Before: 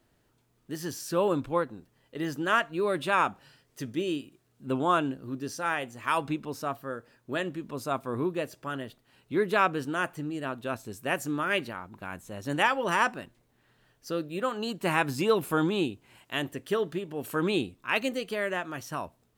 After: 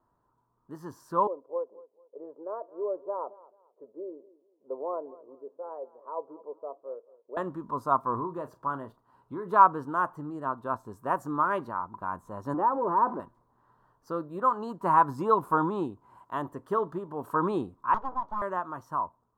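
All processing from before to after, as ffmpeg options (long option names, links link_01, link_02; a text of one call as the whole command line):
ffmpeg -i in.wav -filter_complex "[0:a]asettb=1/sr,asplit=3[link_01][link_02][link_03];[link_01]atrim=end=1.274[link_04];[link_02]atrim=start=1.27:end=7.37,asetpts=PTS-STARTPTS,afade=type=in:duration=0.004:curve=qsin,afade=type=out:start_time=6.096:duration=0.004:curve=qsin,asuperpass=centerf=500:order=4:qfactor=2.5,aecho=1:1:220|440:0.1|0.029,atrim=end_sample=269010[link_05];[link_03]atrim=start=7.366[link_06];[link_04][link_05]acrossfade=duration=0.004:curve1=hsin:curve2=qsin[link_07];[link_07][link_06]acrossfade=duration=0.004:curve1=qsin:curve2=hsin,asettb=1/sr,asplit=3[link_08][link_09][link_10];[link_08]atrim=end=8.174[link_11];[link_09]atrim=start=8.17:end=9.51,asetpts=PTS-STARTPTS,afade=type=in:duration=0.004:curve=qsin,afade=type=out:start_time=1.336:duration=0.004:curve=qsin,acompressor=threshold=-29dB:ratio=6:attack=3.2:release=140:knee=1:detection=peak,asplit=2[link_12][link_13];[link_13]adelay=35,volume=-13.5dB[link_14];[link_12][link_14]amix=inputs=2:normalize=0,atrim=end_sample=59094[link_15];[link_10]atrim=start=9.506[link_16];[link_11][link_15]acrossfade=duration=0.004:curve1=hsin:curve2=qsin[link_17];[link_17][link_16]acrossfade=duration=0.004:curve1=qsin:curve2=hsin,asettb=1/sr,asplit=3[link_18][link_19][link_20];[link_18]atrim=end=12.544[link_21];[link_19]atrim=start=12.54:end=13.2,asetpts=PTS-STARTPTS,afade=type=in:duration=0.004:curve=qsin,afade=type=out:start_time=0.656:duration=0.004:curve=qsin,aeval=exprs='val(0)+0.5*0.0473*sgn(val(0))':channel_layout=same,bandpass=frequency=360:width_type=q:width=1.5[link_22];[link_20]atrim=start=13.196[link_23];[link_21][link_22]acrossfade=duration=0.004:curve1=hsin:curve2=qsin[link_24];[link_24][link_23]acrossfade=duration=0.004:curve1=qsin:curve2=hsin,asettb=1/sr,asplit=3[link_25][link_26][link_27];[link_25]atrim=end=17.944[link_28];[link_26]atrim=start=17.94:end=18.42,asetpts=PTS-STARTPTS,afade=type=in:duration=0.004:curve=qsin,afade=type=out:start_time=0.476:duration=0.004:curve=qsin,lowpass=1400,acrossover=split=200|590[link_29][link_30][link_31];[link_29]acompressor=threshold=-54dB:ratio=4[link_32];[link_30]acompressor=threshold=-34dB:ratio=4[link_33];[link_31]acompressor=threshold=-34dB:ratio=4[link_34];[link_32][link_33][link_34]amix=inputs=3:normalize=0,aeval=exprs='abs(val(0))':channel_layout=same[link_35];[link_27]atrim=start=18.416[link_36];[link_28][link_35]acrossfade=duration=0.004:curve1=hsin:curve2=qsin[link_37];[link_37][link_36]acrossfade=duration=0.004:curve1=qsin:curve2=hsin,equalizer=frequency=980:width=5.1:gain=12,dynaudnorm=framelen=610:gausssize=5:maxgain=6dB,highshelf=frequency=1700:width_type=q:width=3:gain=-12.5,volume=-7.5dB" out.wav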